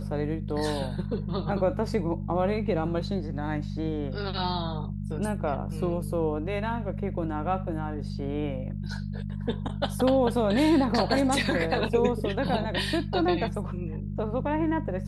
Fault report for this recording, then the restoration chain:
hum 50 Hz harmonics 4 -33 dBFS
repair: de-hum 50 Hz, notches 4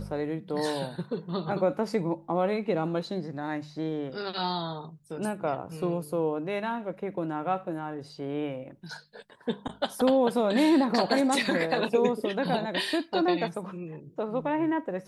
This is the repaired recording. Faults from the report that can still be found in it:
none

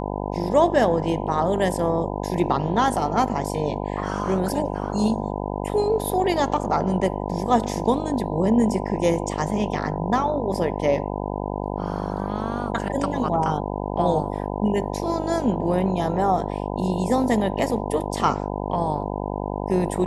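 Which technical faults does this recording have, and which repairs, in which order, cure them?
buzz 50 Hz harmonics 20 -28 dBFS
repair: de-hum 50 Hz, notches 20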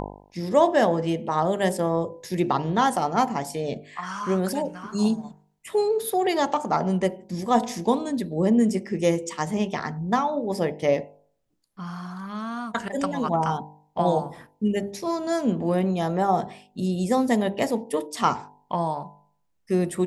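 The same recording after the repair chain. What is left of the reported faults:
none

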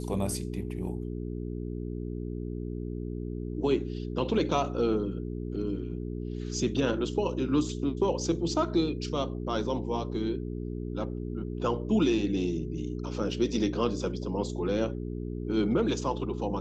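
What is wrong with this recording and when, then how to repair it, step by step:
hum 60 Hz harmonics 7 -35 dBFS
13.31 gap 2.9 ms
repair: de-hum 60 Hz, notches 7; interpolate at 13.31, 2.9 ms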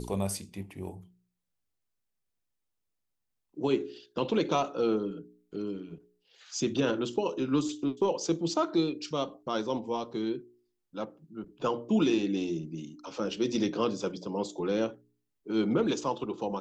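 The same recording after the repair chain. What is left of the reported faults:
none

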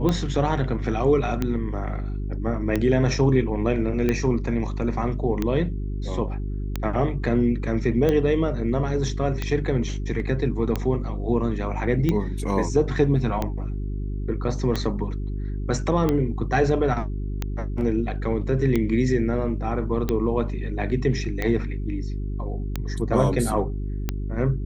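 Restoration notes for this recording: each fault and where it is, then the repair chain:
hum 50 Hz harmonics 8 -28 dBFS
tick 45 rpm -11 dBFS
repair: de-click; de-hum 50 Hz, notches 8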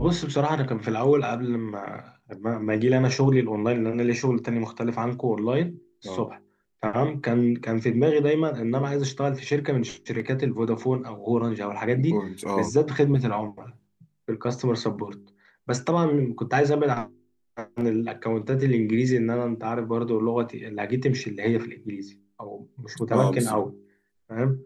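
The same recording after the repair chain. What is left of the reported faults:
none

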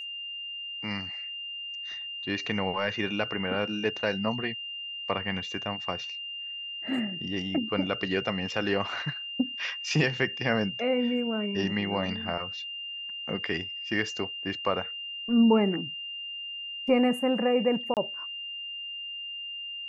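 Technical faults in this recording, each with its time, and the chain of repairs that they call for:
tone 2800 Hz -35 dBFS
17.94–17.97 gap 28 ms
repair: notch 2800 Hz, Q 30; interpolate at 17.94, 28 ms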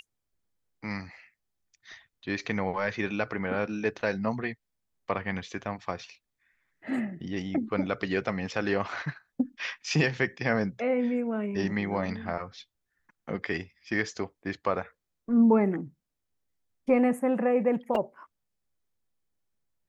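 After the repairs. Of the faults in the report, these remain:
none

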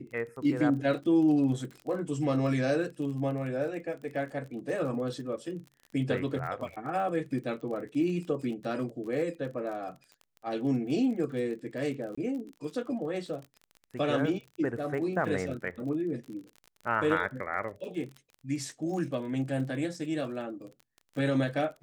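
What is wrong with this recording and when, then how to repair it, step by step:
crackle 34/s -39 dBFS
12.15–12.18 gap 25 ms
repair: de-click; interpolate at 12.15, 25 ms

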